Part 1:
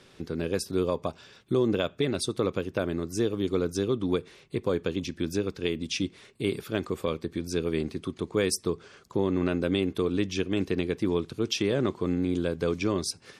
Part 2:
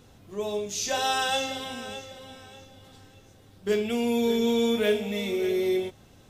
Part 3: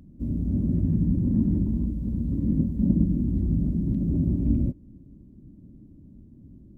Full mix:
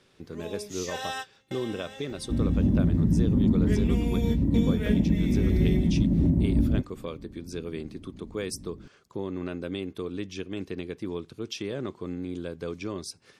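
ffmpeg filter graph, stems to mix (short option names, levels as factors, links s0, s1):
-filter_complex "[0:a]volume=0.447,asplit=2[s0][s1];[1:a]volume=0.376[s2];[2:a]equalizer=f=890:w=1.1:g=9.5,adelay=2100,volume=1.26[s3];[s1]apad=whole_len=277776[s4];[s2][s4]sidechaingate=range=0.02:threshold=0.00316:ratio=16:detection=peak[s5];[s5][s3]amix=inputs=2:normalize=0,equalizer=f=1900:t=o:w=0.23:g=12,alimiter=limit=0.224:level=0:latency=1:release=334,volume=1[s6];[s0][s6]amix=inputs=2:normalize=0"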